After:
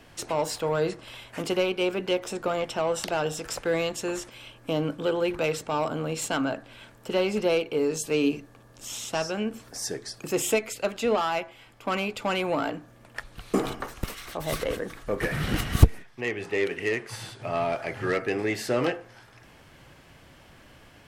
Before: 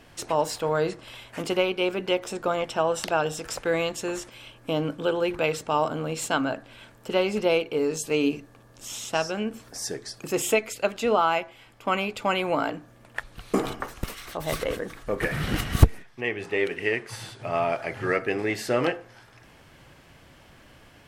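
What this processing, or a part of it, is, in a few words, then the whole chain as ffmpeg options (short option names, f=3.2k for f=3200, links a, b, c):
one-band saturation: -filter_complex "[0:a]acrossover=split=490|3800[a][b][c];[b]asoftclip=type=tanh:threshold=-23.5dB[d];[a][d][c]amix=inputs=3:normalize=0"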